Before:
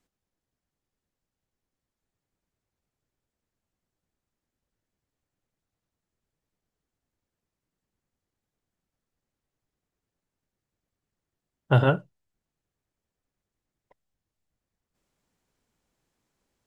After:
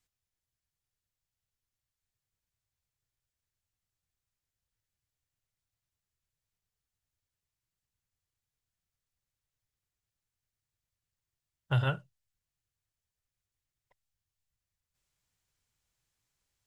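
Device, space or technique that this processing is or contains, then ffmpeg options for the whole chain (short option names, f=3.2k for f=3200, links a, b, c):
car stereo with a boomy subwoofer: -af "tiltshelf=f=1.2k:g=-7.5,lowshelf=f=160:t=q:w=1.5:g=10,alimiter=limit=-11dB:level=0:latency=1:release=103,volume=-7.5dB"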